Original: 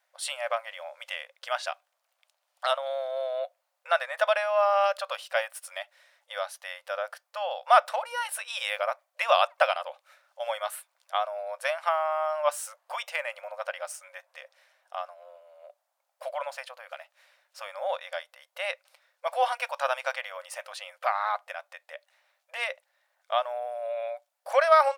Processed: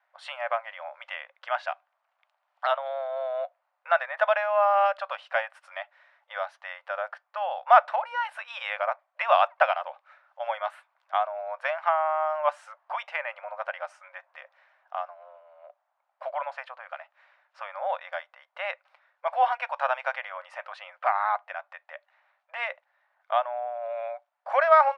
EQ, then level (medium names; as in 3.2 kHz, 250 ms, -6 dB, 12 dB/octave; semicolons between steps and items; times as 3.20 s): high-pass 710 Hz 24 dB/octave; low-pass 1.6 kHz 12 dB/octave; dynamic bell 1.2 kHz, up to -4 dB, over -43 dBFS, Q 2.5; +6.5 dB